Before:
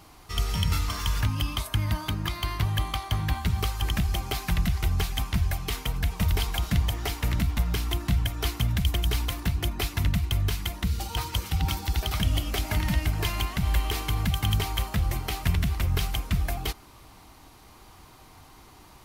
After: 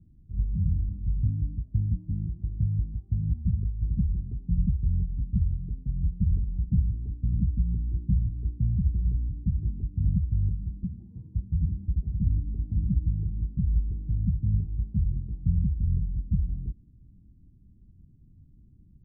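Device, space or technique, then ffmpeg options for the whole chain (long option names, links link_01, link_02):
the neighbour's flat through the wall: -filter_complex "[0:a]asettb=1/sr,asplit=3[link_01][link_02][link_03];[link_01]atrim=end=10.844[link_04];[link_02]atrim=start=10.84:end=11.35,asetpts=PTS-STARTPTS,afade=type=in:duration=0.004:curve=qsin,afade=type=out:start_time=0.506:duration=0.004:curve=qsin,highpass=150[link_05];[link_03]atrim=start=11.346[link_06];[link_04][link_05]acrossfade=duration=0.004:curve1=hsin:curve2=qsin[link_07];[link_07][link_06]acrossfade=duration=0.004:curve1=qsin:curve2=hsin,lowpass=frequency=210:width=0.5412,lowpass=frequency=210:width=1.3066,equalizer=frequency=190:width_type=o:width=0.77:gain=3"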